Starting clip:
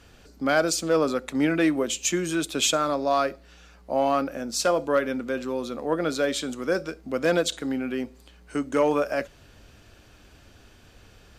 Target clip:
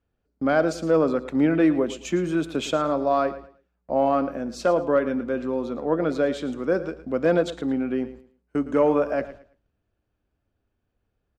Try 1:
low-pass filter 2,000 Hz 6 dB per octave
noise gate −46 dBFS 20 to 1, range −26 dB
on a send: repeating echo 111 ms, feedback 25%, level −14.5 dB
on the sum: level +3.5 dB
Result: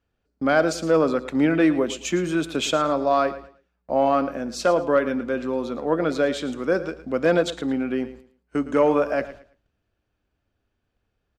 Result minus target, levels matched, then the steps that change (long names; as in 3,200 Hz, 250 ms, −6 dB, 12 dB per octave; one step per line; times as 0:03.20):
2,000 Hz band +3.0 dB
change: low-pass filter 890 Hz 6 dB per octave